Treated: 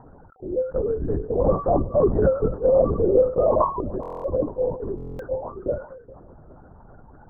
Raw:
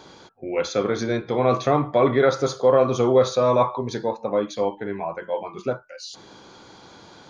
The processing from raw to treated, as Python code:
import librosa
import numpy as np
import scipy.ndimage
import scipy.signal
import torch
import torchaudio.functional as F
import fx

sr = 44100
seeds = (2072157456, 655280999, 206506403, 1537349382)

p1 = fx.spec_expand(x, sr, power=2.6)
p2 = p1 + fx.echo_feedback(p1, sr, ms=406, feedback_pct=50, wet_db=-19.5, dry=0)
p3 = fx.lpc_vocoder(p2, sr, seeds[0], excitation='whisper', order=8)
p4 = scipy.signal.sosfilt(scipy.signal.butter(12, 1800.0, 'lowpass', fs=sr, output='sos'), p3)
p5 = fx.buffer_glitch(p4, sr, at_s=(4.01, 4.96), block=1024, repeats=9)
y = fx.sustainer(p5, sr, db_per_s=140.0)